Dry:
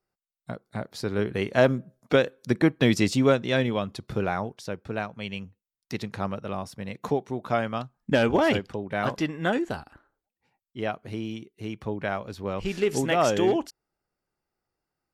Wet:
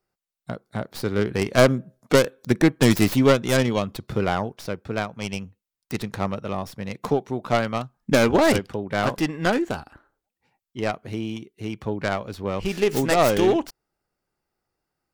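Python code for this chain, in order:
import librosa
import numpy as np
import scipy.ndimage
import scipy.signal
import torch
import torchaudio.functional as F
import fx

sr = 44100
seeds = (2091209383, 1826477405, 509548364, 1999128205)

y = fx.tracing_dist(x, sr, depth_ms=0.33)
y = F.gain(torch.from_numpy(y), 3.5).numpy()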